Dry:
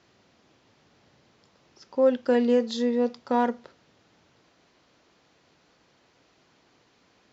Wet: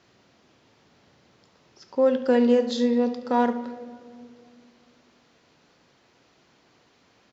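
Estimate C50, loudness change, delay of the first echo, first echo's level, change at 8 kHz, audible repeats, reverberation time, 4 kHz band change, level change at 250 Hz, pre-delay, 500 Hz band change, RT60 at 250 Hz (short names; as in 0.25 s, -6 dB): 10.5 dB, +1.5 dB, 71 ms, -13.5 dB, n/a, 1, 2.2 s, +2.0 dB, +3.0 dB, 4 ms, +1.5 dB, 3.3 s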